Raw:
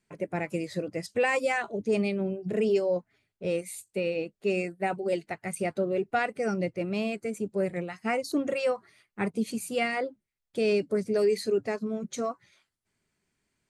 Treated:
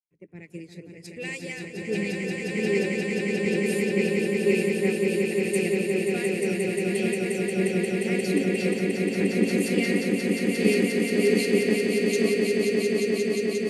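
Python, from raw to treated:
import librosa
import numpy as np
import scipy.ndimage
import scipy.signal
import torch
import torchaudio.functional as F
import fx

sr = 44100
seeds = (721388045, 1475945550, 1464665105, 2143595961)

p1 = fx.band_shelf(x, sr, hz=920.0, db=-15.5, octaves=1.7)
p2 = p1 + fx.echo_swell(p1, sr, ms=177, loudest=8, wet_db=-4, dry=0)
y = fx.band_widen(p2, sr, depth_pct=100)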